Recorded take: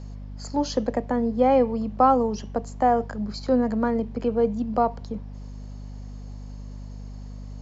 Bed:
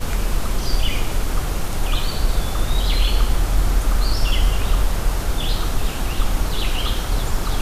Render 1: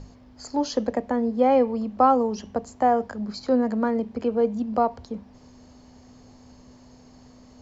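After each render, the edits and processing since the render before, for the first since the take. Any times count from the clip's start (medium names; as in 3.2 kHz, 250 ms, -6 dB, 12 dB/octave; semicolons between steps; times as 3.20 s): hum notches 50/100/150/200 Hz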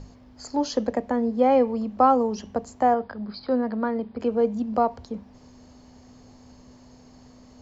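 2.94–4.20 s: rippled Chebyshev low-pass 5 kHz, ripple 3 dB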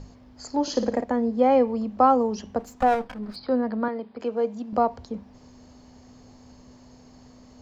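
0.62–1.04 s: flutter echo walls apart 9.6 m, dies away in 0.46 s; 2.59–3.36 s: comb filter that takes the minimum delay 4 ms; 3.88–4.73 s: high-pass 440 Hz 6 dB/octave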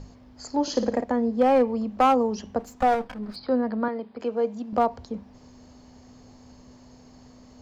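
hard clipper -12.5 dBFS, distortion -19 dB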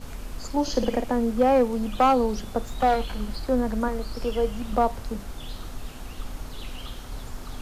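add bed -15.5 dB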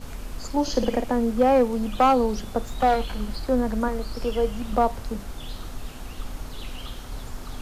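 trim +1 dB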